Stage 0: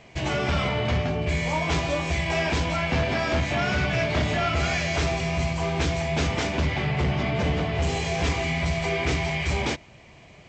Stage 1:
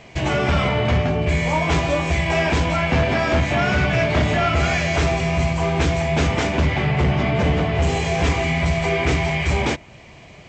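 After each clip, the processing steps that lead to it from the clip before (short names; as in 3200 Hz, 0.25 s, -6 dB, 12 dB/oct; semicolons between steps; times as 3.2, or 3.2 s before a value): dynamic EQ 4700 Hz, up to -5 dB, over -45 dBFS, Q 1; gain +6 dB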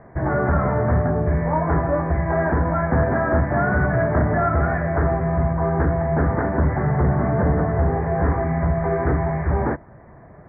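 steep low-pass 1800 Hz 72 dB/oct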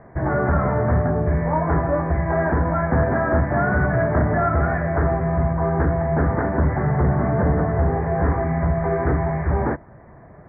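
nothing audible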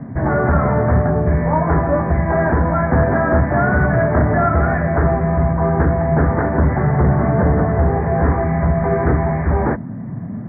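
band noise 100–250 Hz -32 dBFS; gain +4 dB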